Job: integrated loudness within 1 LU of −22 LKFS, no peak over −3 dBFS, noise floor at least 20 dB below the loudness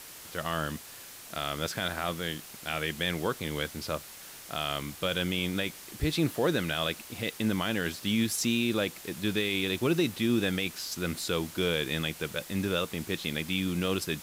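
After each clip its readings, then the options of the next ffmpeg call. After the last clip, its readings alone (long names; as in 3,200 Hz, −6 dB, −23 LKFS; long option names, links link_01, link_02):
background noise floor −47 dBFS; target noise floor −51 dBFS; integrated loudness −30.5 LKFS; sample peak −16.0 dBFS; target loudness −22.0 LKFS
→ -af "afftdn=noise_reduction=6:noise_floor=-47"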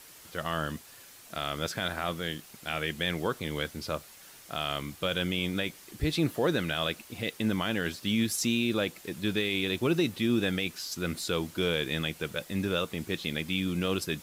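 background noise floor −52 dBFS; integrated loudness −31.0 LKFS; sample peak −16.5 dBFS; target loudness −22.0 LKFS
→ -af "volume=9dB"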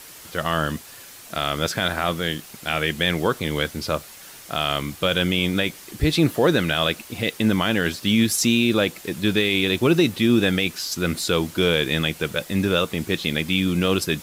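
integrated loudness −22.0 LKFS; sample peak −7.5 dBFS; background noise floor −43 dBFS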